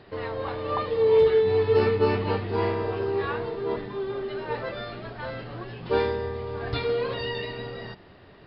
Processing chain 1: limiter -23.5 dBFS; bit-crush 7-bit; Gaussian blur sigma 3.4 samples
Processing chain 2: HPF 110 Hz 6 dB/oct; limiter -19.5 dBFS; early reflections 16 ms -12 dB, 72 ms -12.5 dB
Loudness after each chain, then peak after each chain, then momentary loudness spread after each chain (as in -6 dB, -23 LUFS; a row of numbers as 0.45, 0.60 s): -32.5, -29.0 LUFS; -24.0, -16.5 dBFS; 8, 13 LU